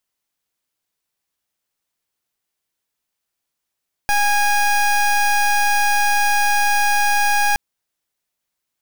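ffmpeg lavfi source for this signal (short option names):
-f lavfi -i "aevalsrc='0.158*(2*lt(mod(822*t,1),0.22)-1)':d=3.47:s=44100"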